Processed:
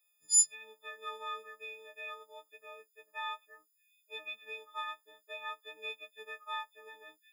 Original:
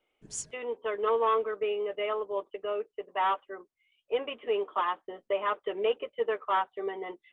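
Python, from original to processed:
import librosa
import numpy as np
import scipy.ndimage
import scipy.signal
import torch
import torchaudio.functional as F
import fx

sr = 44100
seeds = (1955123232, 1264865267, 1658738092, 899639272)

y = fx.freq_snap(x, sr, grid_st=6)
y = fx.vibrato(y, sr, rate_hz=5.1, depth_cents=7.4)
y = F.preemphasis(torch.from_numpy(y), 0.97).numpy()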